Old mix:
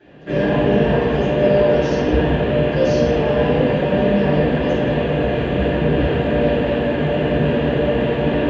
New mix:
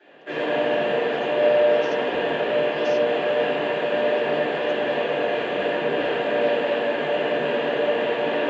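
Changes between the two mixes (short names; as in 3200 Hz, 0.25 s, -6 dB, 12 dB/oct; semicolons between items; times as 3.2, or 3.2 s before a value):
speech: send off; master: add HPF 510 Hz 12 dB/oct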